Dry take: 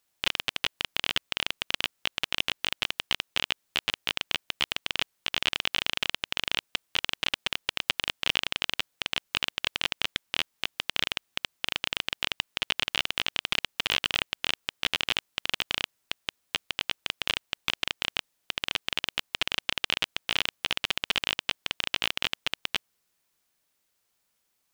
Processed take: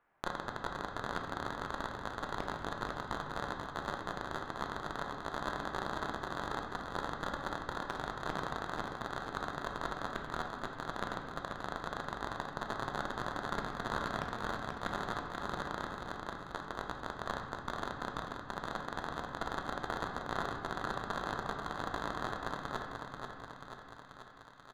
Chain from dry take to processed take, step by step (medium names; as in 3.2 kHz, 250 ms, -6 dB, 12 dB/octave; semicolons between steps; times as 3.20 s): low-pass 1.5 kHz 24 dB/octave; overload inside the chain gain 28 dB; feedback delay 486 ms, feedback 57%, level -5.5 dB; on a send at -2.5 dB: reverberation RT60 1.5 s, pre-delay 3 ms; on the sum: tape noise reduction on one side only encoder only; trim +5.5 dB